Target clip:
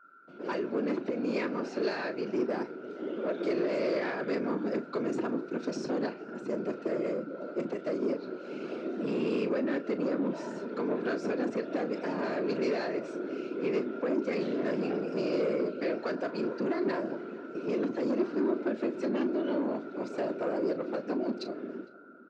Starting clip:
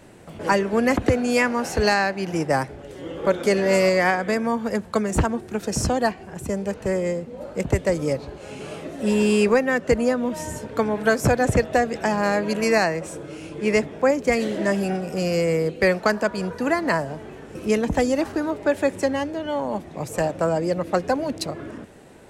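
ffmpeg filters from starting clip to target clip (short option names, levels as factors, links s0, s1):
-filter_complex "[0:a]agate=range=0.0224:threshold=0.0158:ratio=3:detection=peak,equalizer=f=280:t=o:w=0.32:g=8.5,aeval=exprs='val(0)+0.00631*sin(2*PI*1400*n/s)':c=same,dynaudnorm=f=300:g=13:m=3.76,alimiter=limit=0.335:level=0:latency=1:release=141,afftfilt=real='hypot(re,im)*cos(2*PI*random(0))':imag='hypot(re,im)*sin(2*PI*random(1))':win_size=512:overlap=0.75,bandreject=f=1100:w=11,asoftclip=type=tanh:threshold=0.0841,highpass=f=210:w=0.5412,highpass=f=210:w=1.3066,equalizer=f=370:t=q:w=4:g=5,equalizer=f=810:t=q:w=4:g=-9,equalizer=f=1900:t=q:w=4:g=-7,equalizer=f=3200:t=q:w=4:g=-7,lowpass=f=4500:w=0.5412,lowpass=f=4500:w=1.3066,asplit=2[s0][s1];[s1]adelay=36,volume=0.251[s2];[s0][s2]amix=inputs=2:normalize=0,asplit=2[s3][s4];[s4]adelay=456,lowpass=f=1200:p=1,volume=0.126,asplit=2[s5][s6];[s6]adelay=456,lowpass=f=1200:p=1,volume=0.38,asplit=2[s7][s8];[s8]adelay=456,lowpass=f=1200:p=1,volume=0.38[s9];[s5][s7][s9]amix=inputs=3:normalize=0[s10];[s3][s10]amix=inputs=2:normalize=0,volume=0.708"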